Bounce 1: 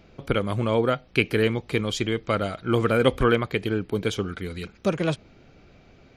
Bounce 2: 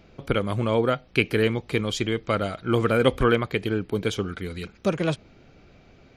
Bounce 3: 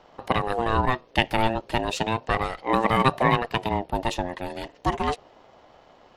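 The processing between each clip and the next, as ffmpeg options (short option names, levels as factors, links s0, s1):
-af anull
-af "aeval=exprs='if(lt(val(0),0),0.708*val(0),val(0))':c=same,aeval=exprs='val(0)*sin(2*PI*560*n/s+560*0.2/0.35*sin(2*PI*0.35*n/s))':c=same,volume=1.5"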